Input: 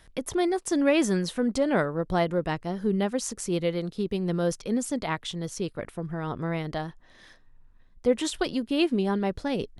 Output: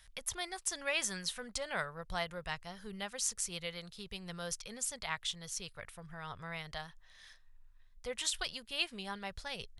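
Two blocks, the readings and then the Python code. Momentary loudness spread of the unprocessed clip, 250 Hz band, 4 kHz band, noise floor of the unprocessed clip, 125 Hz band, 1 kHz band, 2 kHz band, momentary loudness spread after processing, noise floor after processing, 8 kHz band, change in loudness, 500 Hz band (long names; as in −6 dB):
9 LU, −23.0 dB, −2.0 dB, −55 dBFS, −17.5 dB, −11.0 dB, −4.5 dB, 13 LU, −61 dBFS, −0.5 dB, −11.0 dB, −18.0 dB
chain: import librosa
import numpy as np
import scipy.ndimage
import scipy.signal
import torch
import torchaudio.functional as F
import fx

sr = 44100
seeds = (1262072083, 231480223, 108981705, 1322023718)

y = fx.tone_stack(x, sr, knobs='10-0-10')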